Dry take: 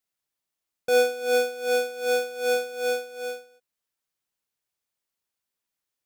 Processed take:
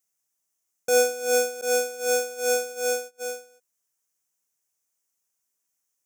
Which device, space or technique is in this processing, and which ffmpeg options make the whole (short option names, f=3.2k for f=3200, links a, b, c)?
budget condenser microphone: -filter_complex "[0:a]highpass=f=93:p=1,highshelf=f=5.1k:t=q:w=3:g=6.5,asettb=1/sr,asplit=3[a][b][c];[a]atrim=end=1.614[d];[b]atrim=start=1.61:end=3.22,asetpts=PTS-STARTPTS,afade=t=in:d=0.004:c=qsin,afade=t=out:st=1.606:d=0.004:c=qsin,agate=range=-25dB:threshold=-35dB:ratio=16:detection=peak[e];[c]atrim=start=3.216[f];[d][e]acrossfade=d=0.004:c1=hsin:c2=qsin[g];[g][f]acrossfade=d=0.004:c1=qsin:c2=hsin"